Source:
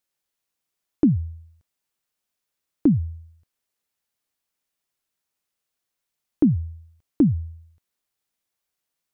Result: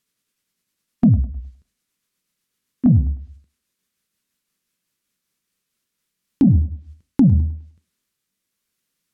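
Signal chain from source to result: gliding pitch shift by -4 st ending unshifted; bell 200 Hz +8.5 dB 0.82 oct; gate -53 dBFS, range -7 dB; in parallel at +1 dB: compressor 4:1, threshold -25 dBFS, peak gain reduction 14.5 dB; on the sum: bell 760 Hz -10.5 dB 0.73 oct; soft clip -5.5 dBFS, distortion -18 dB; flange 0.89 Hz, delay 5.5 ms, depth 7.4 ms, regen -81%; treble ducked by the level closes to 420 Hz, closed at -20 dBFS; thinning echo 0.103 s, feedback 36%, high-pass 210 Hz, level -21 dB; maximiser +18.5 dB; gain -6 dB

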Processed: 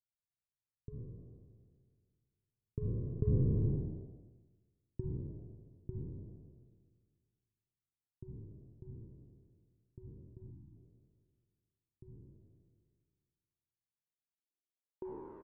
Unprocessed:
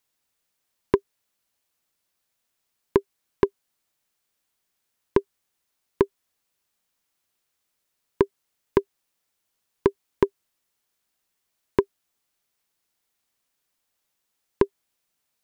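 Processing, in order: spectral trails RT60 1.81 s; Doppler pass-by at 3.73, 21 m/s, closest 3.3 m; in parallel at -10 dB: decimation with a swept rate 24×, swing 100% 0.59 Hz; on the sum: low-pass sweep 120 Hz -> 1200 Hz, 13.93–15.39; frequency-shifting echo 98 ms, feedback 50%, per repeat +83 Hz, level -19.5 dB; spectral delete 10.51–10.76, 350–770 Hz; gain +3.5 dB

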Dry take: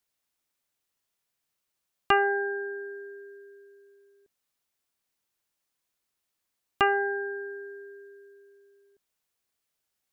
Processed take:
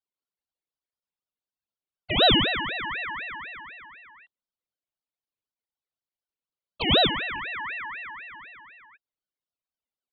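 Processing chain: sine-wave speech; 7.07–8.32 Chebyshev band-pass 390–1400 Hz, order 3; ring modulator with a swept carrier 1800 Hz, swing 30%, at 4 Hz; gain +7.5 dB

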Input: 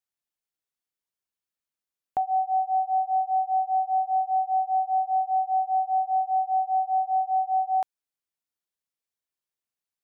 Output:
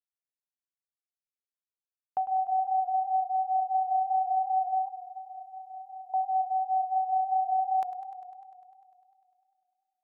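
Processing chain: gate -36 dBFS, range -23 dB; 4.88–6.14 steep high-pass 880 Hz 72 dB/oct; warbling echo 0.1 s, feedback 76%, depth 60 cents, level -14 dB; gain -3.5 dB

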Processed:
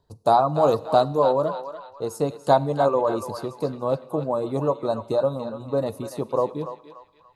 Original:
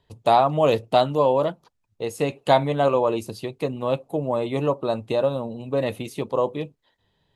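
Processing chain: band shelf 2500 Hz -15.5 dB 1.1 oct; reverb removal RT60 0.53 s; narrowing echo 0.289 s, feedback 53%, band-pass 2100 Hz, level -5.5 dB; Schroeder reverb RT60 0.99 s, combs from 33 ms, DRR 19 dB

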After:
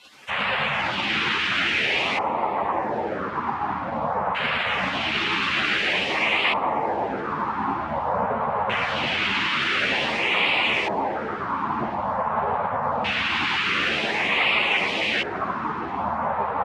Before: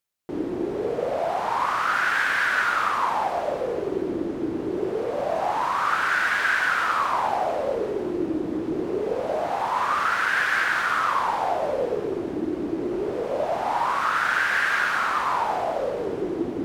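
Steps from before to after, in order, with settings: delta modulation 64 kbps, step -23.5 dBFS; high shelf 5500 Hz -8.5 dB; spectral gate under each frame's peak -15 dB weak; LFO notch sine 0.5 Hz 460–6200 Hz; in parallel at +2 dB: limiter -28 dBFS, peak gain reduction 8 dB; on the sum: HPF 110 Hz 12 dB/oct; echo 0.113 s -7.5 dB; on a send at -13 dB: reverb RT60 2.2 s, pre-delay 50 ms; on the sum: LFO low-pass square 0.23 Hz 950–2800 Hz; ensemble effect; gain +5.5 dB

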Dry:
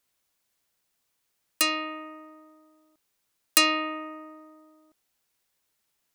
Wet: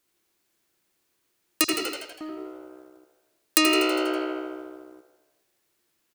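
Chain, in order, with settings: bell 340 Hz +12.5 dB 0.44 oct; 1.64–2.21 elliptic band-stop 110–4900 Hz; frequency-shifting echo 81 ms, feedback 58%, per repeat +65 Hz, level -8 dB; on a send at -3 dB: reverb RT60 0.85 s, pre-delay 73 ms; on the sum: compressor 2:1, threshold -29 dBFS, peak gain reduction 8.5 dB; in parallel at -3 dB: crossover distortion -53.5 dBFS; on the sum: gain +1.5 dB

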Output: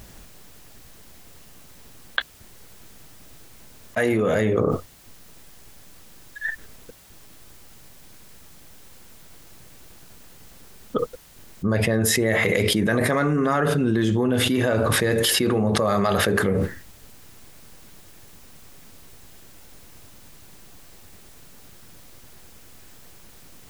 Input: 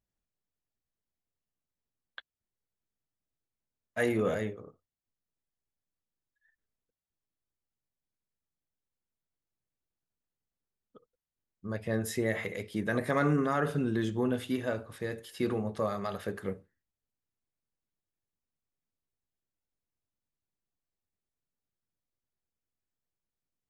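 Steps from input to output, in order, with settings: fast leveller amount 100%; gain +4 dB

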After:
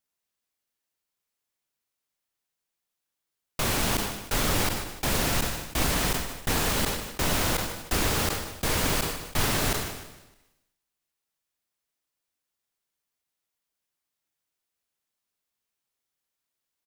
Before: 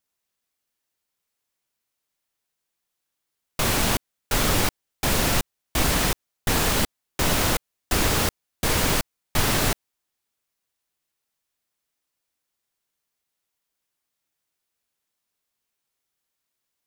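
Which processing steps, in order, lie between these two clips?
feedback echo 0.153 s, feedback 52%, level -21 dB; on a send at -20.5 dB: reverb RT60 1.2 s, pre-delay 39 ms; on the sum: sustainer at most 56 dB/s; gain -4 dB

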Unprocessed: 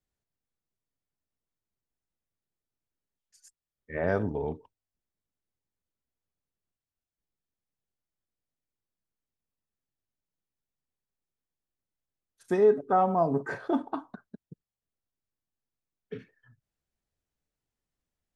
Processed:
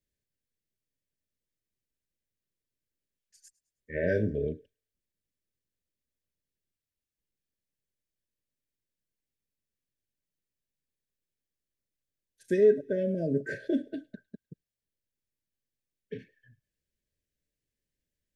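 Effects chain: brick-wall FIR band-stop 650–1500 Hz; 3.93–4.48 doubler 28 ms -7 dB; thin delay 0.105 s, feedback 40%, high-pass 2100 Hz, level -22 dB

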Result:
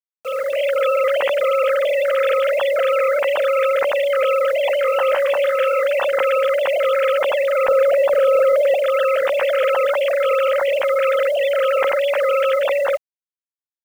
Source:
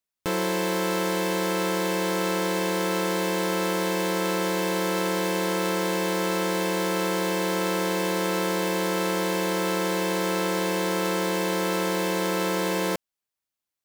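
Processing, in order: sine-wave speech; 7.67–8.75 tilt -4 dB/oct; AGC gain up to 8 dB; bit-crush 7-bit; 4.82–5.87 doubler 23 ms -12 dB

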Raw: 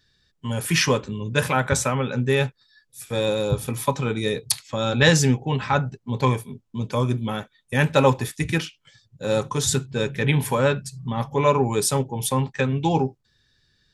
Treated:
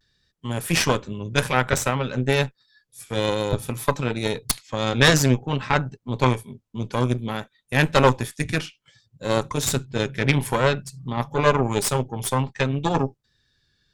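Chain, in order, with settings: added harmonics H 4 -8 dB, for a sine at -3 dBFS; vibrato 0.56 Hz 41 cents; gain -2.5 dB

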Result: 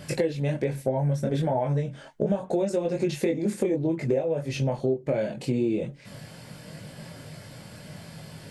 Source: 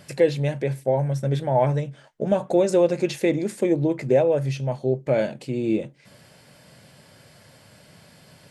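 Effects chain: chorus voices 6, 0.59 Hz, delay 22 ms, depth 3.9 ms; compressor 6:1, threshold -33 dBFS, peak gain reduction 17.5 dB; low shelf 360 Hz +5.5 dB; gain +7.5 dB

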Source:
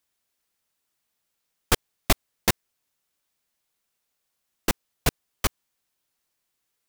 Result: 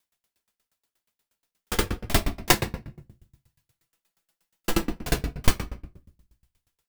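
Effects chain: 2.5–4.7 comb 6 ms, depth 97%; shoebox room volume 170 m³, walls mixed, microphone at 1.3 m; dB-ramp tremolo decaying 8.4 Hz, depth 29 dB; gain +5 dB

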